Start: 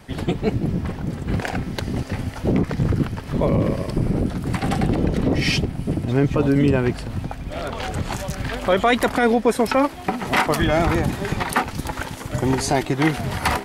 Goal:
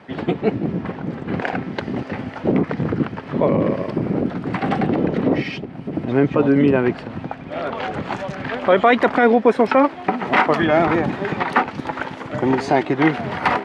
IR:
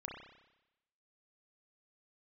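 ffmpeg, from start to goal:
-filter_complex "[0:a]asplit=3[a][b][c];[a]afade=t=out:st=5.41:d=0.02[d];[b]acompressor=threshold=-25dB:ratio=6,afade=t=in:st=5.41:d=0.02,afade=t=out:st=5.93:d=0.02[e];[c]afade=t=in:st=5.93:d=0.02[f];[d][e][f]amix=inputs=3:normalize=0,highpass=200,lowpass=2.5k,volume=4dB"

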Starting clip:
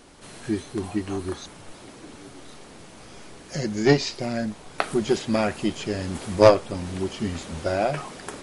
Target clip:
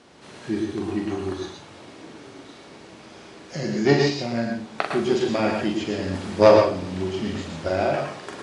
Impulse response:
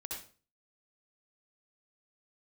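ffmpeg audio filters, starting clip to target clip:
-filter_complex "[0:a]highpass=110,lowpass=5.7k,asplit=2[a][b];[1:a]atrim=start_sample=2205,adelay=43[c];[b][c]afir=irnorm=-1:irlink=0,volume=0.5dB[d];[a][d]amix=inputs=2:normalize=0,volume=-1dB"

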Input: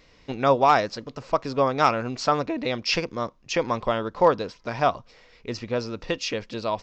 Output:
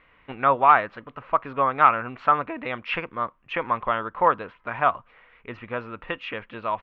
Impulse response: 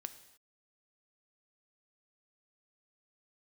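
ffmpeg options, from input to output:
-af "firequalizer=gain_entry='entry(460,0);entry(1200,13);entry(3100,3);entry(5000,-28)':delay=0.05:min_phase=1,volume=-6.5dB"

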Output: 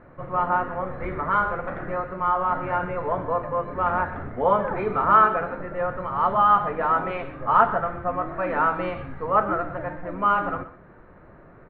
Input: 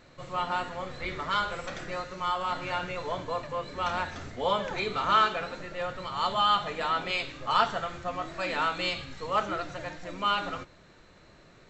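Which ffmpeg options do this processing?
-af "lowpass=f=1.6k:w=0.5412,lowpass=f=1.6k:w=1.3066,aecho=1:1:125:0.178,volume=7.5dB"

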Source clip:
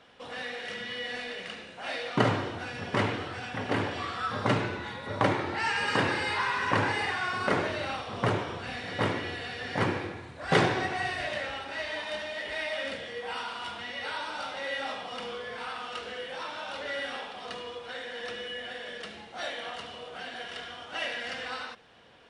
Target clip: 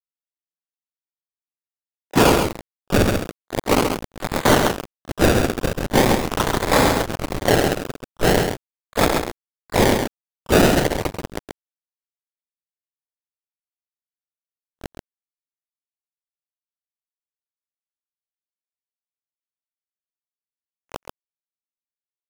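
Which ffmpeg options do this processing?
-filter_complex "[0:a]lowpass=f=1.3k:w=0.5412,lowpass=f=1.3k:w=1.3066,bandreject=f=50:t=h:w=6,bandreject=f=100:t=h:w=6,bandreject=f=150:t=h:w=6,asplit=2[a][b];[b]acompressor=threshold=-39dB:ratio=10,volume=-1dB[c];[a][c]amix=inputs=2:normalize=0,aeval=exprs='val(0)+0.00631*(sin(2*PI*50*n/s)+sin(2*PI*2*50*n/s)/2+sin(2*PI*3*50*n/s)/3+sin(2*PI*4*50*n/s)/4+sin(2*PI*5*50*n/s)/5)':c=same,aresample=16000,acrusher=bits=3:mix=0:aa=0.000001,aresample=44100,asplit=2[d][e];[e]highpass=f=720:p=1,volume=37dB,asoftclip=type=tanh:threshold=-9.5dB[f];[d][f]amix=inputs=2:normalize=0,lowpass=f=1k:p=1,volume=-6dB,acrusher=samples=29:mix=1:aa=0.000001:lfo=1:lforange=29:lforate=0.41,asplit=4[g][h][i][j];[h]asetrate=33038,aresample=44100,atempo=1.33484,volume=-11dB[k];[i]asetrate=37084,aresample=44100,atempo=1.18921,volume=-8dB[l];[j]asetrate=88200,aresample=44100,atempo=0.5,volume=-16dB[m];[g][k][l][m]amix=inputs=4:normalize=0,aecho=1:1:134:0.501,volume=4.5dB"

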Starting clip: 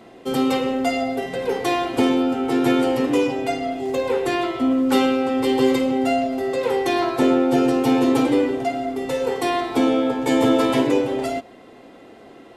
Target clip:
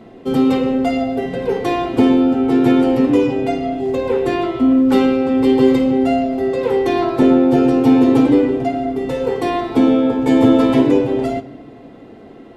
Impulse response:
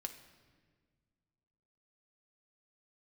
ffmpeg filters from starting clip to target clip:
-filter_complex "[0:a]lowshelf=f=390:g=11.5,asplit=2[a][b];[1:a]atrim=start_sample=2205,lowpass=5.8k[c];[b][c]afir=irnorm=-1:irlink=0,volume=1dB[d];[a][d]amix=inputs=2:normalize=0,volume=-6dB"

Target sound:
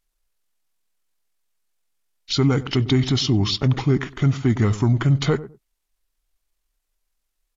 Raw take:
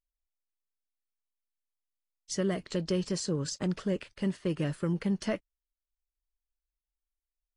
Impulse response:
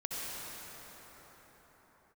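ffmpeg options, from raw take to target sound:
-filter_complex "[0:a]asplit=2[a][b];[b]alimiter=level_in=5dB:limit=-24dB:level=0:latency=1:release=24,volume=-5dB,volume=1dB[c];[a][c]amix=inputs=2:normalize=0,asplit=2[d][e];[e]adelay=102,lowpass=f=920:p=1,volume=-14.5dB,asplit=2[f][g];[g]adelay=102,lowpass=f=920:p=1,volume=0.22[h];[d][f][h]amix=inputs=3:normalize=0,asetrate=31183,aresample=44100,atempo=1.41421,volume=8.5dB"

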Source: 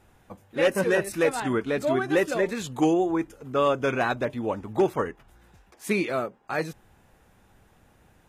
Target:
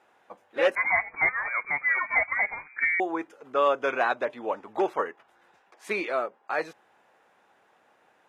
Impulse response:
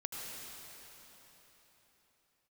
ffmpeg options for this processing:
-filter_complex "[0:a]highpass=560,aemphasis=mode=reproduction:type=75fm,asettb=1/sr,asplit=3[a][b][c];[a]atrim=end=0.754[d];[b]atrim=start=0.75:end=3,asetpts=PTS-STARTPTS,afade=t=in:d=0.004:c=qsin,afade=t=out:st=2.246:d=0.004:c=qsin,lowpass=f=2.2k:t=q:w=0.5098,lowpass=f=2.2k:t=q:w=0.6013,lowpass=f=2.2k:t=q:w=0.9,lowpass=f=2.2k:t=q:w=2.563,afreqshift=-2600[e];[c]atrim=start=2.996[f];[d][e]acrossfade=d=0.004:c1=hsin:c2=qsin[g];[g][f]acrossfade=d=0.004:c1=qsin:c2=hsin,volume=2dB"

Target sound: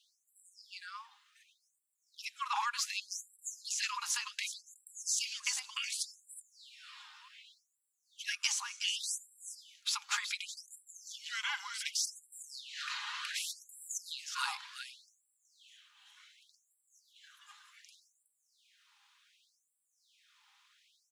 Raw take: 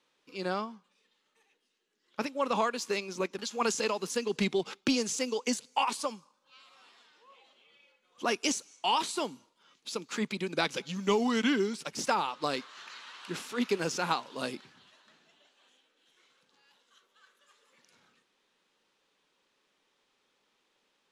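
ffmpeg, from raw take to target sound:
-af "aecho=1:1:4.9:0.32,acompressor=threshold=-34dB:ratio=6,aecho=1:1:370:0.376,afftfilt=real='re*gte(b*sr/1024,760*pow(7500/760,0.5+0.5*sin(2*PI*0.67*pts/sr)))':imag='im*gte(b*sr/1024,760*pow(7500/760,0.5+0.5*sin(2*PI*0.67*pts/sr)))':win_size=1024:overlap=0.75,volume=6.5dB"

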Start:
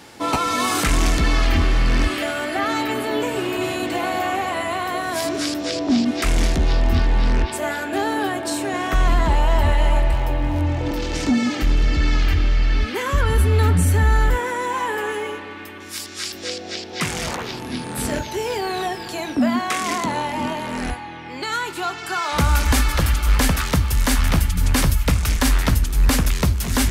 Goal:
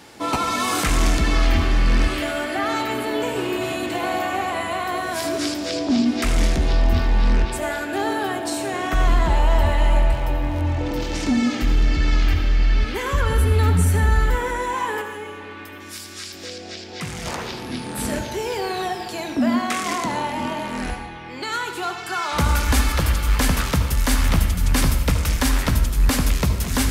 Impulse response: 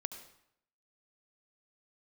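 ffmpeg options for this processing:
-filter_complex "[0:a]asettb=1/sr,asplit=3[a][b][c];[a]atrim=end=15.014[d];[b]atrim=start=15.01:end=17.26,asetpts=PTS-STARTPTS,afade=t=in:d=0.004:c=qsin,afade=t=out:st=2.246:d=0.004:c=qsin,acrossover=split=190[e][f];[f]acompressor=threshold=-32dB:ratio=2.5[g];[e][g]amix=inputs=2:normalize=0[h];[c]atrim=start=17.256[i];[d][h]acrossfade=d=0.004:c1=hsin:c2=qsin[j];[j][i]acrossfade=d=0.004:c1=qsin:c2=hsin[k];[1:a]atrim=start_sample=2205[l];[k][l]afir=irnorm=-1:irlink=0"

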